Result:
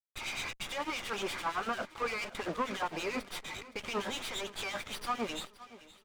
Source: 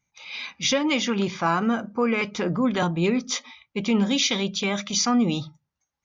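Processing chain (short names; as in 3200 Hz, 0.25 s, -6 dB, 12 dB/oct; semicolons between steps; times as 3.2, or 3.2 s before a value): block floating point 7-bit; HPF 680 Hz 12 dB/oct; high shelf 3800 Hz +12 dB; in parallel at -1.5 dB: compressor, threshold -32 dBFS, peak gain reduction 19 dB; on the sum: limiter -20 dBFS, peak gain reduction 17 dB; soft clip -32 dBFS, distortion -9 dB; harmonic tremolo 8.8 Hz, depth 100%, crossover 2200 Hz; bit-crush 8-bit; air absorption 140 m; feedback echo 0.518 s, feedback 49%, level -18 dB; running maximum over 5 samples; gain +7 dB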